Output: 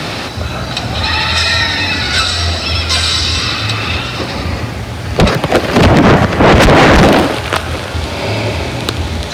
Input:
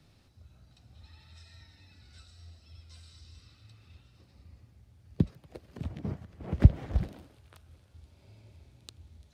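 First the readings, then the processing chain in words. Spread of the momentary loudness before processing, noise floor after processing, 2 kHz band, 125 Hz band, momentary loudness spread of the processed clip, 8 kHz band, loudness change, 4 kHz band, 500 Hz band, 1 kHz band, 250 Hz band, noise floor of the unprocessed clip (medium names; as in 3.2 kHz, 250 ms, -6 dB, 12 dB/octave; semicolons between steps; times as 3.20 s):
17 LU, -21 dBFS, +43.5 dB, +18.0 dB, 13 LU, no reading, +18.5 dB, +43.5 dB, +35.0 dB, +41.0 dB, +25.0 dB, -62 dBFS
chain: overdrive pedal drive 45 dB, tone 2.3 kHz, clips at -3 dBFS; sine folder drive 10 dB, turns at -3 dBFS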